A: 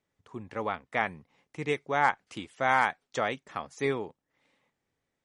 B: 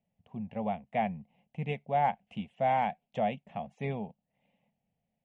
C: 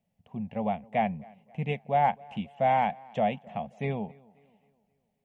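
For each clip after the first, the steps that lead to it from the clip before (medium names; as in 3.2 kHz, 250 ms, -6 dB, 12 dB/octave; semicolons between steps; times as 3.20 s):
FFT filter 110 Hz 0 dB, 210 Hz +10 dB, 320 Hz -16 dB, 710 Hz +5 dB, 1.3 kHz -22 dB, 2.8 kHz -2 dB, 4.6 kHz -25 dB
tape echo 267 ms, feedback 47%, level -23.5 dB, low-pass 3.2 kHz; trim +3.5 dB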